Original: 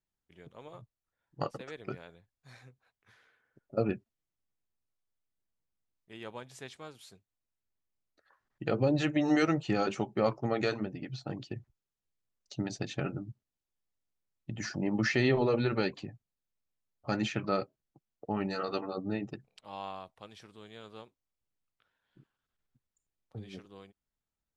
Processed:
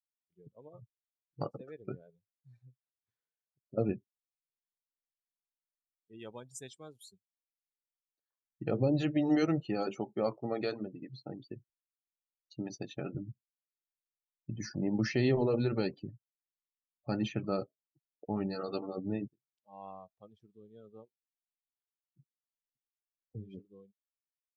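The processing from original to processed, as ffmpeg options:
ffmpeg -i in.wav -filter_complex "[0:a]asettb=1/sr,asplit=3[link_01][link_02][link_03];[link_01]atrim=end=6.194[link_04];[link_02]atrim=start=6.19:end=8.64,asetpts=PTS-STARTPTS,afade=type=in:duration=0.004:curve=qsin,afade=type=out:start_time=2.446:duration=0.004:curve=qsin,aemphasis=mode=production:type=75kf[link_05];[link_03]atrim=start=8.636[link_06];[link_04][link_05]acrossfade=duration=0.004:curve1=hsin:curve2=qsin[link_07];[link_07][link_06]acrossfade=duration=0.004:curve1=qsin:curve2=hsin,asettb=1/sr,asplit=3[link_08][link_09][link_10];[link_08]atrim=end=9.604[link_11];[link_09]atrim=start=9.6:end=13.15,asetpts=PTS-STARTPTS,afade=type=in:duration=0.004:curve=qsin,afade=type=out:start_time=3.546:duration=0.004:curve=qsin,equalizer=frequency=73:width_type=o:width=2.4:gain=-11.5[link_12];[link_10]atrim=start=13.146[link_13];[link_11][link_12]acrossfade=duration=0.004:curve1=hsin:curve2=qsin[link_14];[link_14][link_13]acrossfade=duration=0.004:curve1=qsin:curve2=hsin,asplit=2[link_15][link_16];[link_15]atrim=end=19.28,asetpts=PTS-STARTPTS,afade=type=out:start_time=19.276:duration=0.004:curve=hsin[link_17];[link_16]atrim=start=19.28,asetpts=PTS-STARTPTS,afade=type=in:duration=0.66[link_18];[link_17][link_18]concat=n=2:v=0:a=1,afftdn=noise_reduction=29:noise_floor=-42,equalizer=frequency=1600:width_type=o:width=2.1:gain=-8.5" out.wav

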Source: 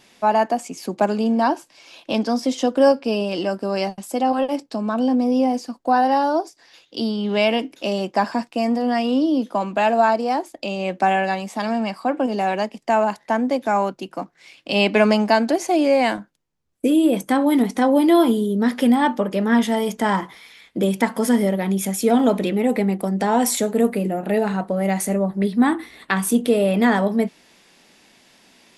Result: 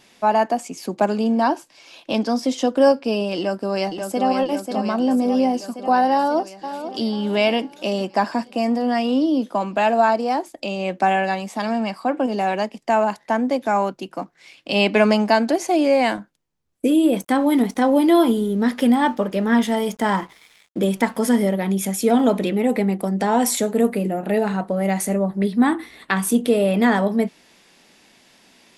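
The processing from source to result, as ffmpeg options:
ffmpeg -i in.wav -filter_complex "[0:a]asplit=2[link_01][link_02];[link_02]afade=type=in:start_time=3.37:duration=0.01,afade=type=out:start_time=4.27:duration=0.01,aecho=0:1:540|1080|1620|2160|2700|3240|3780|4320|4860|5400|5940|6480:0.530884|0.371619|0.260133|0.182093|0.127465|0.0892257|0.062458|0.0437206|0.0306044|0.0214231|0.0149962|0.0104973[link_03];[link_01][link_03]amix=inputs=2:normalize=0,asplit=2[link_04][link_05];[link_05]afade=type=in:start_time=6.14:duration=0.01,afade=type=out:start_time=7.04:duration=0.01,aecho=0:1:490|980|1470|1960:0.298538|0.104488|0.0365709|0.0127998[link_06];[link_04][link_06]amix=inputs=2:normalize=0,asettb=1/sr,asplit=3[link_07][link_08][link_09];[link_07]atrim=end=17.124[link_10];[link_08]atrim=start=17.12:end=21.19,asetpts=PTS-STARTPTS,afade=type=in:duration=0.004:curve=qsin,afade=type=out:start_time=4.066:duration=0.004:curve=qsin,aeval=exprs='sgn(val(0))*max(abs(val(0))-0.00447,0)':channel_layout=same[link_11];[link_09]atrim=start=21.186[link_12];[link_10][link_11]acrossfade=duration=0.004:curve1=hsin:curve2=qsin[link_13];[link_13][link_12]acrossfade=duration=0.004:curve1=qsin:curve2=hsin" out.wav

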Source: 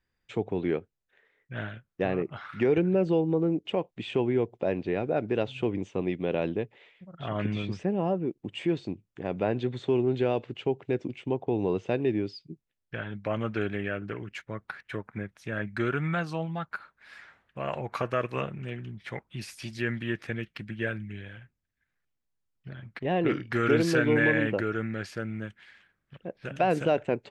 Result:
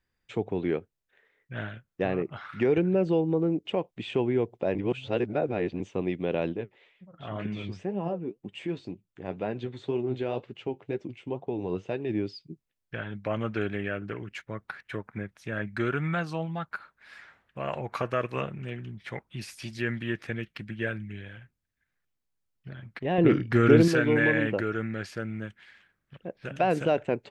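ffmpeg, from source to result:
ffmpeg -i in.wav -filter_complex "[0:a]asplit=3[link_01][link_02][link_03];[link_01]afade=type=out:start_time=6.52:duration=0.02[link_04];[link_02]flanger=delay=4.8:depth=6.5:regen=53:speed=2:shape=sinusoidal,afade=type=in:start_time=6.52:duration=0.02,afade=type=out:start_time=12.09:duration=0.02[link_05];[link_03]afade=type=in:start_time=12.09:duration=0.02[link_06];[link_04][link_05][link_06]amix=inputs=3:normalize=0,asettb=1/sr,asplit=3[link_07][link_08][link_09];[link_07]atrim=end=23.184[link_10];[link_08]atrim=start=23.18:end=23.88,asetpts=PTS-STARTPTS,afade=type=in:duration=0.004:curve=qsin,afade=type=out:start_time=0.696:duration=0.004:curve=qsin,lowshelf=frequency=460:gain=9[link_11];[link_09]atrim=start=23.876[link_12];[link_10][link_11]acrossfade=duration=0.004:curve1=hsin:curve2=qsin[link_13];[link_13][link_12]acrossfade=duration=0.004:curve1=qsin:curve2=hsin,asplit=3[link_14][link_15][link_16];[link_14]atrim=end=4.752[link_17];[link_15]atrim=start=4.748:end=5.802,asetpts=PTS-STARTPTS,areverse[link_18];[link_16]atrim=start=5.798[link_19];[link_17][link_18]acrossfade=duration=0.004:curve1=hsin:curve2=hsin[link_20];[link_20][link_19]acrossfade=duration=0.004:curve1=hsin:curve2=hsin" out.wav

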